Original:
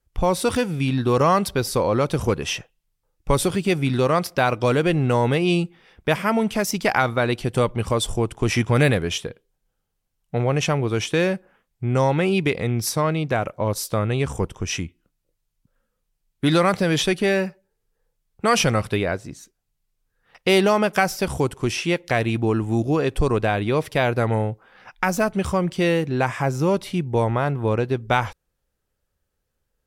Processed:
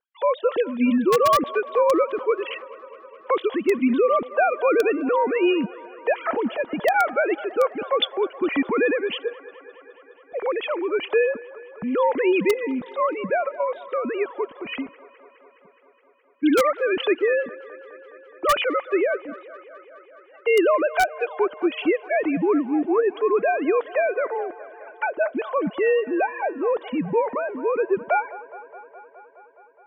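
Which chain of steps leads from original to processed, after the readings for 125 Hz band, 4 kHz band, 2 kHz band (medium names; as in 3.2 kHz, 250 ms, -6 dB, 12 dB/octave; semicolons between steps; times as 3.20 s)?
under -20 dB, -5.0 dB, -1.5 dB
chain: formants replaced by sine waves; band-stop 2.6 kHz, Q 16; in parallel at -6 dB: integer overflow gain 9 dB; on the sum: feedback echo behind a band-pass 209 ms, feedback 76%, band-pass 1 kHz, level -17 dB; trim -4.5 dB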